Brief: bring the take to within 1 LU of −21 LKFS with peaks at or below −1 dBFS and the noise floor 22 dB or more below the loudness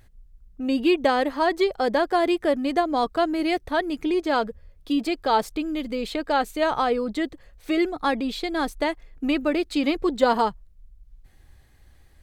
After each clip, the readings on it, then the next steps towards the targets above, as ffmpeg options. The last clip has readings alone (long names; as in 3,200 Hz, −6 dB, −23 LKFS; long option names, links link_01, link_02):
integrated loudness −24.0 LKFS; sample peak −7.0 dBFS; target loudness −21.0 LKFS
→ -af "volume=3dB"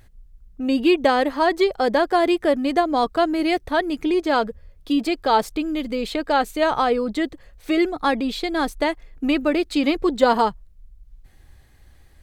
integrated loudness −21.0 LKFS; sample peak −4.0 dBFS; background noise floor −51 dBFS